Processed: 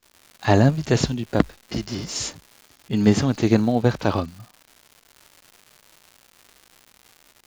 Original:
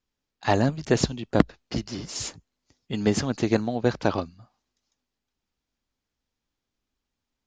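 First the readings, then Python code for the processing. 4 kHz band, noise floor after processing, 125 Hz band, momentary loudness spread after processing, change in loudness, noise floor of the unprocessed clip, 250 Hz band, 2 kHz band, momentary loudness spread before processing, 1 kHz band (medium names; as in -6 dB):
+3.0 dB, -59 dBFS, +7.0 dB, 11 LU, +4.5 dB, -85 dBFS, +5.0 dB, +2.5 dB, 10 LU, +2.5 dB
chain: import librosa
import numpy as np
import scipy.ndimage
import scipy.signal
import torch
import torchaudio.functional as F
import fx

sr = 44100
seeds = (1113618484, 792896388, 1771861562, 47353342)

y = fx.dmg_crackle(x, sr, seeds[0], per_s=280.0, level_db=-41.0)
y = fx.hpss(y, sr, part='harmonic', gain_db=9)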